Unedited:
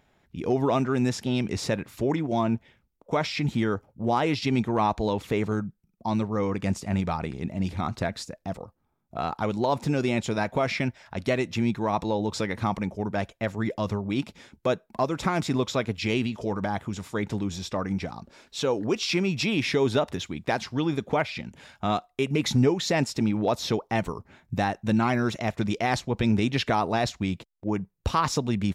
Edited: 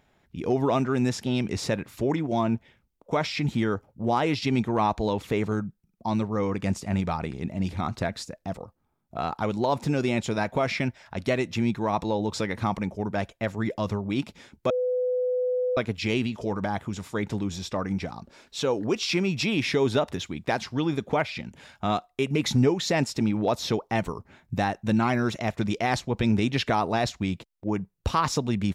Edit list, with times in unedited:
0:14.70–0:15.77: beep over 501 Hz −22.5 dBFS

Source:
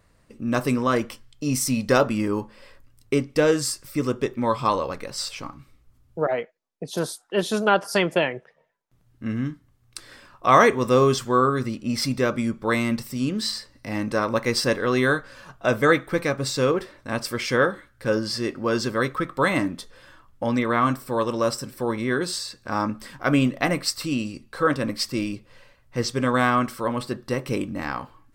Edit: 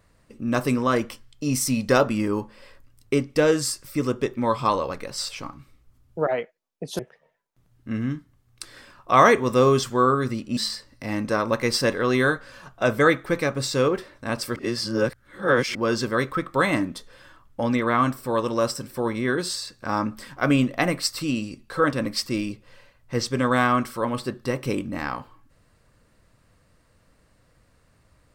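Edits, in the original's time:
0:06.99–0:08.34: remove
0:11.92–0:13.40: remove
0:17.39–0:18.58: reverse

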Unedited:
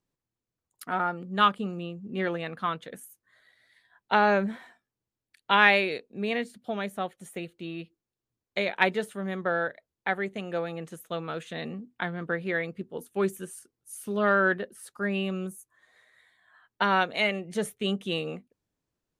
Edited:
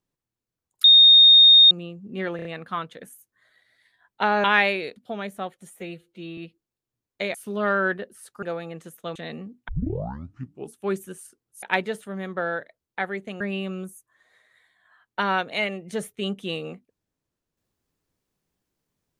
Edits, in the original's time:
0:00.84–0:01.71: beep over 3,690 Hz −8.5 dBFS
0:02.36: stutter 0.03 s, 4 plays
0:04.35–0:05.52: remove
0:06.04–0:06.55: remove
0:07.29–0:07.74: time-stretch 1.5×
0:08.71–0:10.49: swap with 0:13.95–0:15.03
0:11.22–0:11.48: remove
0:12.01: tape start 1.09 s

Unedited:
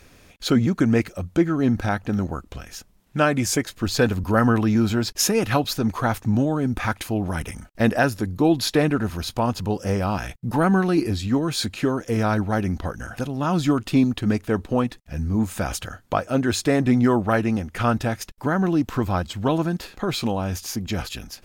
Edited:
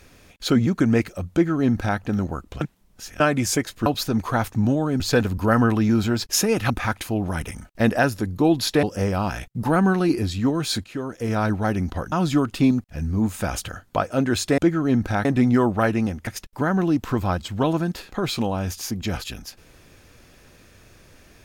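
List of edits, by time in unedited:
0:01.32–0:01.99: duplicate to 0:16.75
0:02.61–0:03.20: reverse
0:05.56–0:06.70: move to 0:03.86
0:08.83–0:09.71: remove
0:11.72–0:12.38: fade in, from −12 dB
0:13.00–0:13.45: remove
0:14.17–0:15.01: remove
0:17.77–0:18.12: remove

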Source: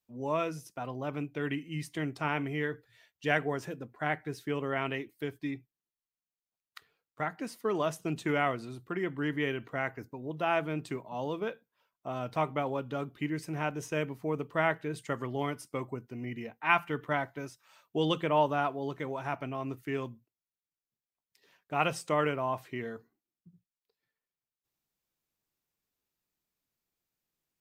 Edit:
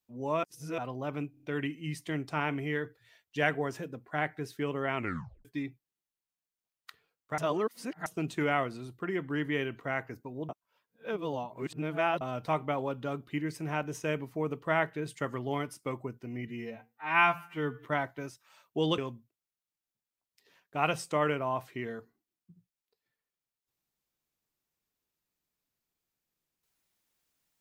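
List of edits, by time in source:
0:00.43–0:00.78: reverse
0:01.31: stutter 0.03 s, 5 plays
0:04.84: tape stop 0.49 s
0:07.26–0:07.94: reverse
0:10.37–0:12.09: reverse
0:16.35–0:17.04: time-stretch 2×
0:18.17–0:19.95: remove

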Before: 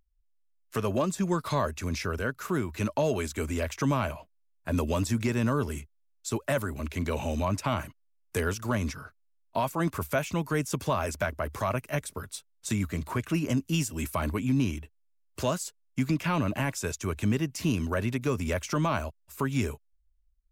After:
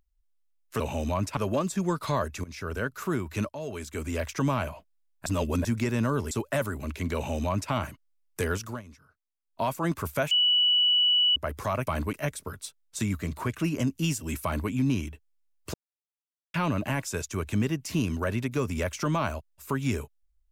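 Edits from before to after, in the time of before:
0:01.87–0:02.20: fade in, from −20.5 dB
0:02.92–0:03.63: fade in, from −15.5 dB
0:04.69–0:05.08: reverse
0:05.74–0:06.27: remove
0:07.11–0:07.68: duplicate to 0:00.80
0:08.58–0:09.60: duck −18.5 dB, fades 0.20 s
0:10.27–0:11.32: beep over 2,950 Hz −19 dBFS
0:14.14–0:14.40: duplicate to 0:11.83
0:15.44–0:16.24: silence

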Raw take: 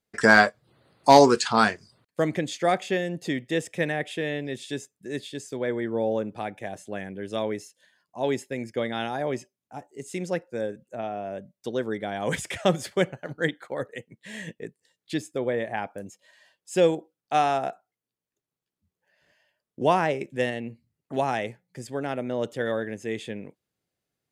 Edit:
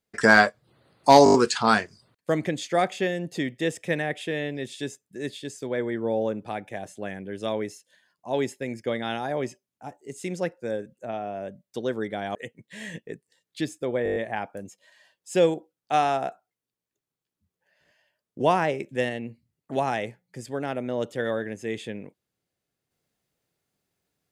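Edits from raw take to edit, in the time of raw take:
0:01.24: stutter 0.02 s, 6 plays
0:12.25–0:13.88: remove
0:15.57: stutter 0.02 s, 7 plays

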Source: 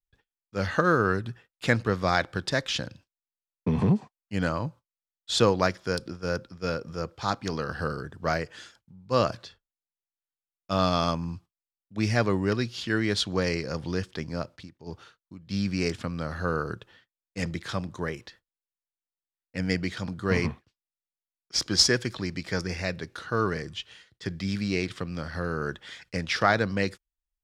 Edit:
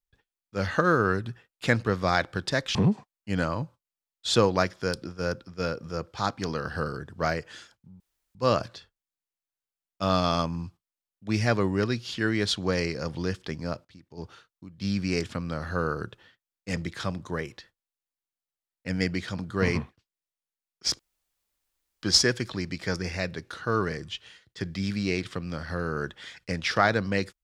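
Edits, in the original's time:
0:02.75–0:03.79: remove
0:09.04: splice in room tone 0.35 s
0:14.54–0:14.79: fade in, from −22 dB
0:21.68: splice in room tone 1.04 s

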